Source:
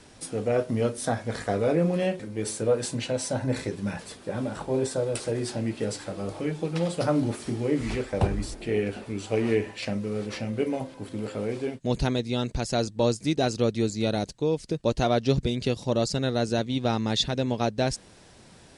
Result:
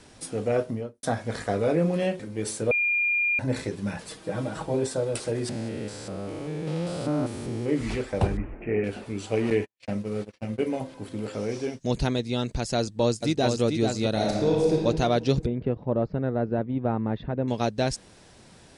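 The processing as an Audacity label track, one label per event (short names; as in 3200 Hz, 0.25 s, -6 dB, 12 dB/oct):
0.550000	1.030000	studio fade out
2.710000	3.390000	bleep 2410 Hz -21 dBFS
4.070000	4.740000	comb 6.3 ms
5.490000	7.690000	stepped spectrum every 0.2 s
8.370000	8.840000	steep low-pass 2600 Hz 72 dB/oct
9.500000	10.680000	gate -32 dBFS, range -57 dB
11.330000	11.910000	bell 5700 Hz +15 dB 0.34 oct
12.780000	13.620000	echo throw 0.44 s, feedback 15%, level -5 dB
14.120000	14.750000	reverb throw, RT60 1.8 s, DRR -3.5 dB
15.460000	17.480000	Bessel low-pass 1200 Hz, order 4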